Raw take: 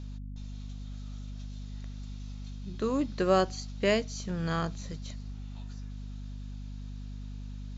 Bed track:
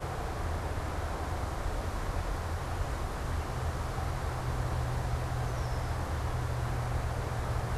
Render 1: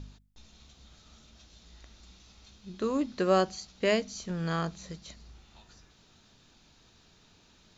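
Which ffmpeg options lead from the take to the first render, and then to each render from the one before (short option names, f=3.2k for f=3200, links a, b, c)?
-af "bandreject=f=50:t=h:w=4,bandreject=f=100:t=h:w=4,bandreject=f=150:t=h:w=4,bandreject=f=200:t=h:w=4,bandreject=f=250:t=h:w=4"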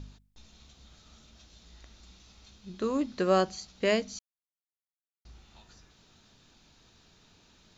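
-filter_complex "[0:a]asplit=3[a][b][c];[a]atrim=end=4.19,asetpts=PTS-STARTPTS,afade=t=out:st=4.186:d=0.004:c=hsin[d];[b]atrim=start=4.19:end=5.25,asetpts=PTS-STARTPTS,volume=0[e];[c]atrim=start=5.25,asetpts=PTS-STARTPTS,afade=t=in:d=0.004:c=hsin[f];[d][e][f]concat=n=3:v=0:a=1"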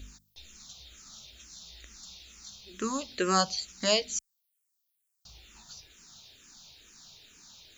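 -filter_complex "[0:a]crystalizer=i=6.5:c=0,asplit=2[a][b];[b]afreqshift=-2.2[c];[a][c]amix=inputs=2:normalize=1"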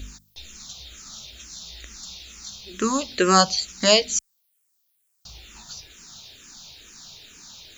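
-af "volume=9dB"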